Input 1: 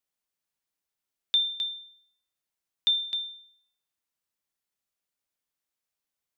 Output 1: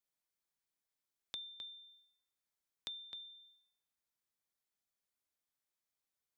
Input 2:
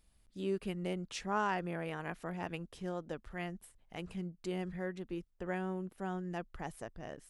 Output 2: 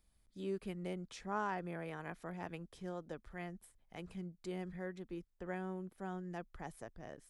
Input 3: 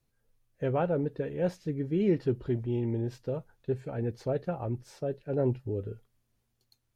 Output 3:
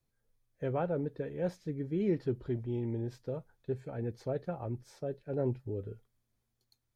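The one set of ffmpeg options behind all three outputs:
ffmpeg -i in.wav -filter_complex "[0:a]bandreject=frequency=2800:width=11,acrossover=split=410|1700[link_01][link_02][link_03];[link_03]acompressor=threshold=-45dB:ratio=6[link_04];[link_01][link_02][link_04]amix=inputs=3:normalize=0,volume=-4.5dB" out.wav

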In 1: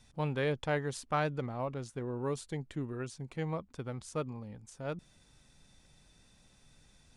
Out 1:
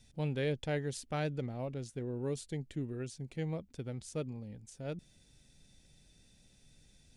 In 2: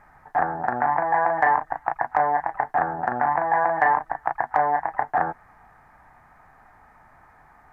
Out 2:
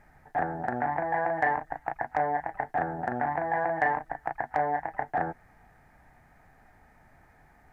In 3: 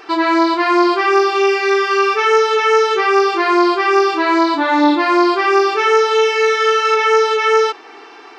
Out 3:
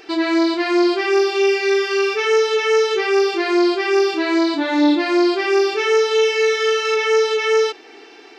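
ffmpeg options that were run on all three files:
ffmpeg -i in.wav -af "equalizer=frequency=1100:width_type=o:width=0.97:gain=-14" out.wav

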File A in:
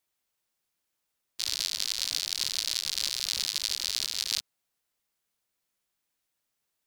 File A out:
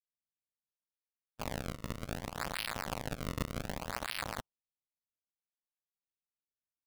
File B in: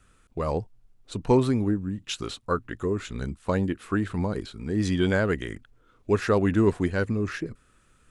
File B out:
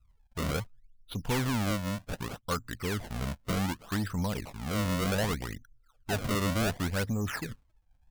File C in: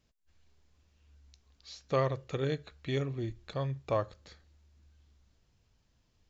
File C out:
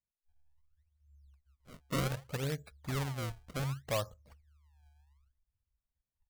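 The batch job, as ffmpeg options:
ffmpeg -i in.wav -af "aresample=16000,asoftclip=type=tanh:threshold=-22.5dB,aresample=44100,afftdn=noise_reduction=25:noise_floor=-50,acrusher=samples=31:mix=1:aa=0.000001:lfo=1:lforange=49.6:lforate=0.66,equalizer=frequency=360:width_type=o:width=0.68:gain=-9.5" out.wav

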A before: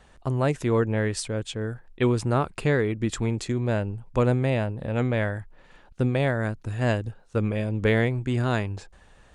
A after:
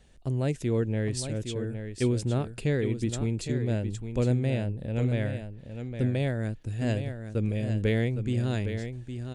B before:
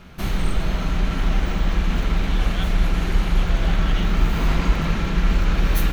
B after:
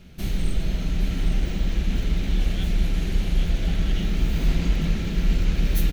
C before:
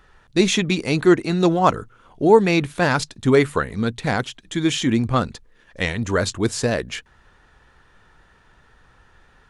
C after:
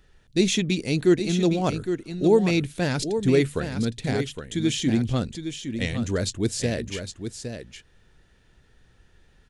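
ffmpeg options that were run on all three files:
ffmpeg -i in.wav -filter_complex "[0:a]equalizer=frequency=1100:width_type=o:width=1.4:gain=-14.5,asplit=2[link_01][link_02];[link_02]aecho=0:1:812:0.376[link_03];[link_01][link_03]amix=inputs=2:normalize=0,volume=-2dB" out.wav

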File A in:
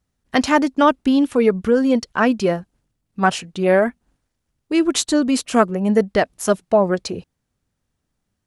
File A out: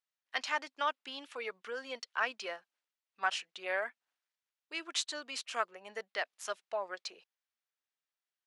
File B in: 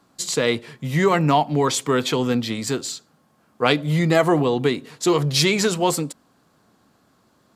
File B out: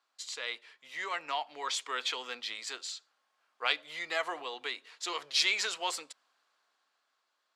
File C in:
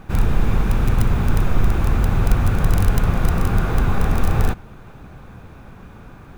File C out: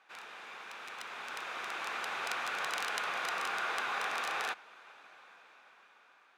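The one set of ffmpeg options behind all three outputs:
ffmpeg -i in.wav -af "highpass=500,lowpass=2900,dynaudnorm=framelen=330:gausssize=9:maxgain=11dB,aderivative" out.wav

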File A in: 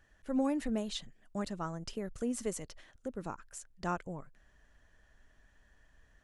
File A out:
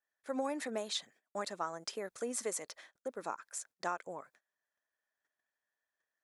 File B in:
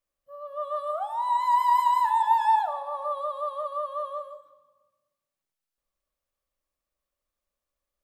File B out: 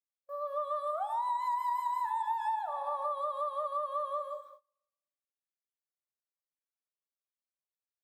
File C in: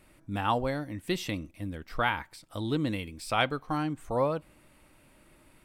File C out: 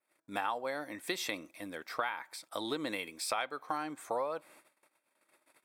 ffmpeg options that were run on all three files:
ffmpeg -i in.wav -af "bandreject=frequency=2900:width=6.6,agate=range=-25dB:threshold=-56dB:ratio=16:detection=peak,highpass=530,adynamicequalizer=threshold=0.00251:dfrequency=4900:dqfactor=1.5:tfrequency=4900:tqfactor=1.5:attack=5:release=100:ratio=0.375:range=2.5:mode=cutabove:tftype=bell,acompressor=threshold=-36dB:ratio=8,volume=5dB" out.wav

